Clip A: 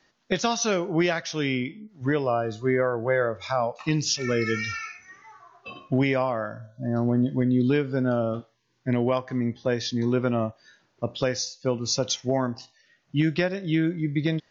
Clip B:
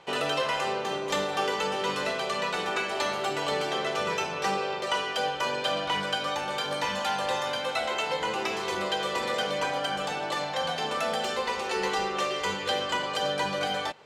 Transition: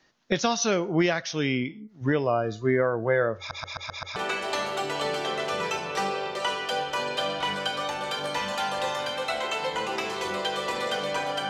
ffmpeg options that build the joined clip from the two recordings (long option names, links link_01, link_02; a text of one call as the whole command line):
ffmpeg -i cue0.wav -i cue1.wav -filter_complex "[0:a]apad=whole_dur=11.49,atrim=end=11.49,asplit=6[link_01][link_02][link_03][link_04][link_05][link_06];[link_01]atrim=end=3.512[link_07];[link_02]atrim=start=3.378:end=3.512[link_08];[link_03]atrim=start=3.378:end=3.512[link_09];[link_04]atrim=start=3.378:end=3.512[link_10];[link_05]atrim=start=3.378:end=3.512[link_11];[link_06]atrim=start=3.378:end=3.512[link_12];[1:a]atrim=start=2.628:end=9.96[link_13];[link_07][link_08]acrossfade=duration=0.004:curve1=hsin:curve2=hsin[link_14];[link_14][link_09]acrossfade=duration=0.004:curve1=hsin:curve2=hsin[link_15];[link_15][link_10]acrossfade=duration=0.004:curve1=hsin:curve2=hsin[link_16];[link_16][link_11]acrossfade=duration=0.004:curve1=hsin:curve2=hsin[link_17];[link_17][link_12]acrossfade=duration=0.004:curve1=hsin:curve2=hsin[link_18];[link_18][link_13]acrossfade=duration=0.004:curve1=hsin:curve2=hsin" out.wav